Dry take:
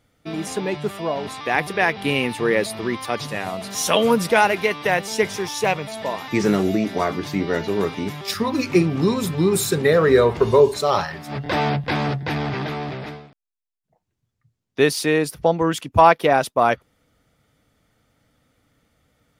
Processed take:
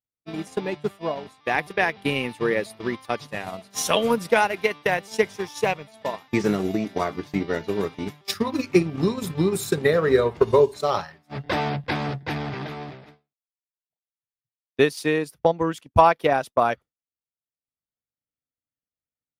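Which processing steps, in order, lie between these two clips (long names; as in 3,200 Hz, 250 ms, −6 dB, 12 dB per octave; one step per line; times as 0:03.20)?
downward expander −25 dBFS
transient designer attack +5 dB, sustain −7 dB
level −5 dB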